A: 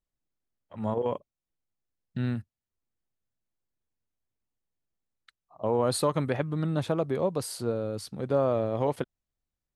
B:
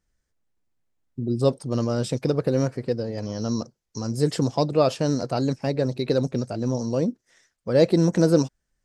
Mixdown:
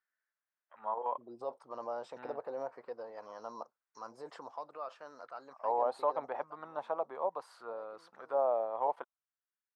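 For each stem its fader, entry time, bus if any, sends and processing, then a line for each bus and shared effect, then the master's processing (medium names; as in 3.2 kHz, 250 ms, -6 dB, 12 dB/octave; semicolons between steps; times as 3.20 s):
0.0 dB, 0.00 s, no send, none
4.14 s -1.5 dB -> 4.90 s -8 dB -> 6.21 s -8 dB -> 6.69 s -20 dB, 0.00 s, no send, peak limiter -16 dBFS, peak gain reduction 11 dB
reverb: none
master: auto-wah 790–1600 Hz, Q 3.1, down, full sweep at -21.5 dBFS; high-pass 540 Hz 6 dB/octave; peaking EQ 690 Hz +5.5 dB 1.8 oct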